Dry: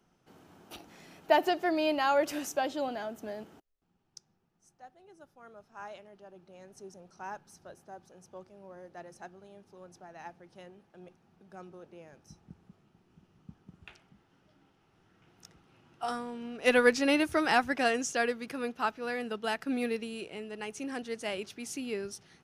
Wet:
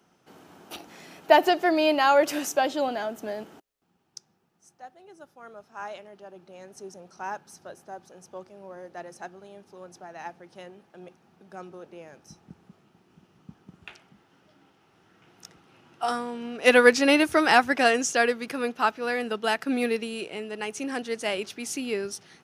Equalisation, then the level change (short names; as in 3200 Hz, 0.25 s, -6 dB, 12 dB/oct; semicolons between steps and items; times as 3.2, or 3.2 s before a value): HPF 210 Hz 6 dB/oct; +7.5 dB